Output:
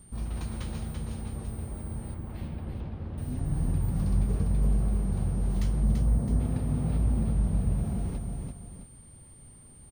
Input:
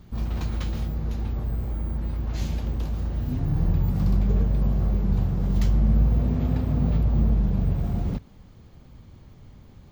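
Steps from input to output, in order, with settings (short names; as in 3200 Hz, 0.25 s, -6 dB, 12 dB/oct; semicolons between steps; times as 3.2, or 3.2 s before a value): 5.83–6.4 bell 2900 Hz -14 dB 0.75 oct; whine 8900 Hz -48 dBFS; 2.14–3.18 air absorption 370 m; tapped delay 0.337/0.663 s -5/-12.5 dB; gain -6 dB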